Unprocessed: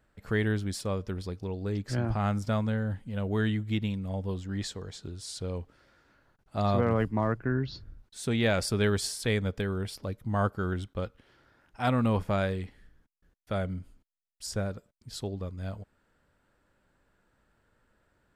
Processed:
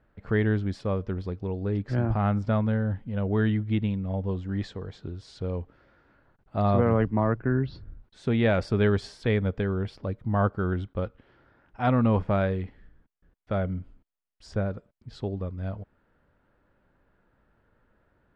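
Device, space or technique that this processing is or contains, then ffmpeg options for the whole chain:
phone in a pocket: -af "lowpass=3700,highshelf=frequency=2300:gain=-9,volume=4dB"

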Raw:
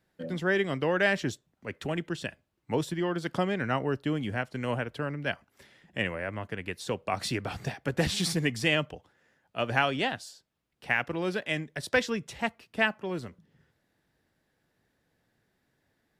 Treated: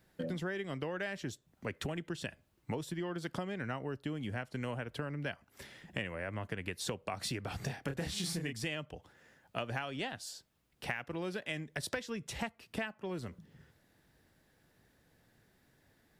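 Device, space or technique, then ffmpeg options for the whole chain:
ASMR close-microphone chain: -filter_complex "[0:a]asettb=1/sr,asplit=3[link_01][link_02][link_03];[link_01]atrim=end=7.654[link_04];[link_02]atrim=start=7.65:end=8.53,asetpts=PTS-STARTPTS,afade=type=in:duration=0.004:curve=qsin,afade=type=out:start_time=0.876:duration=0.004:curve=qsin,asplit=2[link_05][link_06];[link_06]adelay=29,volume=-4dB[link_07];[link_05][link_07]amix=inputs=2:normalize=0,atrim=end_sample=38808[link_08];[link_03]atrim=start=8.526[link_09];[link_04][link_08]acrossfade=duration=0.004:curve1=hsin:curve2=qsin[link_10];[link_10][link_09]acrossfade=duration=0.004:curve1=qsin:curve2=hsin,lowshelf=frequency=110:gain=5,acompressor=threshold=-39dB:ratio=10,highshelf=frequency=7100:gain=5,volume=4dB"

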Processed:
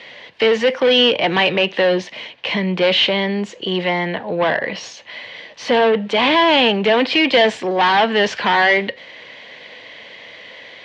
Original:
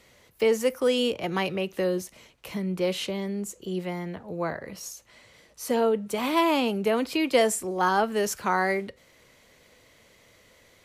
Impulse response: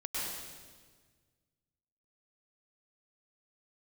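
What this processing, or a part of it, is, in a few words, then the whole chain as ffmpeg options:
overdrive pedal into a guitar cabinet: -filter_complex "[0:a]asplit=2[link_01][link_02];[link_02]highpass=frequency=720:poles=1,volume=23dB,asoftclip=type=tanh:threshold=-10.5dB[link_03];[link_01][link_03]amix=inputs=2:normalize=0,lowpass=frequency=4100:poles=1,volume=-6dB,highpass=100,equalizer=frequency=380:width_type=q:width=4:gain=-4,equalizer=frequency=1300:width_type=q:width=4:gain=-10,equalizer=frequency=1800:width_type=q:width=4:gain=4,equalizer=frequency=3100:width_type=q:width=4:gain=5,lowpass=frequency=4300:width=0.5412,lowpass=frequency=4300:width=1.3066,volume=4.5dB"

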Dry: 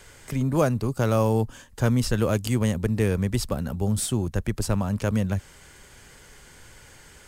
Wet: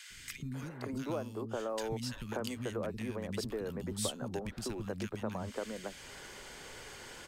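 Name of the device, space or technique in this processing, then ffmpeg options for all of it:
ASMR close-microphone chain: -filter_complex "[0:a]acrossover=split=220 5300:gain=0.141 1 0.251[link_01][link_02][link_03];[link_01][link_02][link_03]amix=inputs=3:normalize=0,lowshelf=frequency=200:gain=6,acompressor=threshold=-38dB:ratio=6,highshelf=frequency=6800:gain=6,acrossover=split=240|1700[link_04][link_05][link_06];[link_04]adelay=100[link_07];[link_05]adelay=540[link_08];[link_07][link_08][link_06]amix=inputs=3:normalize=0,volume=4dB"

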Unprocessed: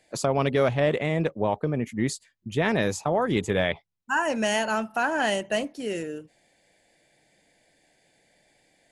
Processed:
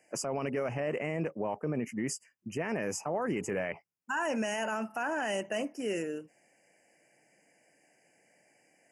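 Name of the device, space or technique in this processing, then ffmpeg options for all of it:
PA system with an anti-feedback notch: -af "highpass=170,asuperstop=centerf=3800:order=20:qfactor=2.2,alimiter=limit=-22dB:level=0:latency=1:release=33,volume=-2dB"

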